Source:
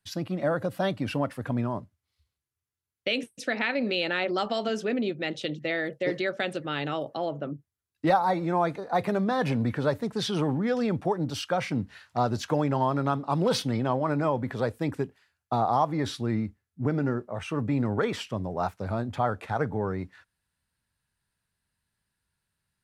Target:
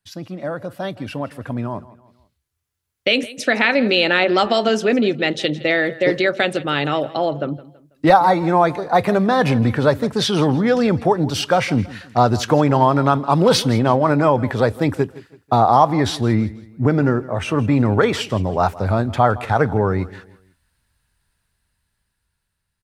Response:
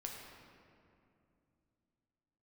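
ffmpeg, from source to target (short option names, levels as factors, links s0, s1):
-af "aecho=1:1:164|328|492:0.112|0.0415|0.0154,dynaudnorm=f=650:g=7:m=6.68,asubboost=boost=2.5:cutoff=81"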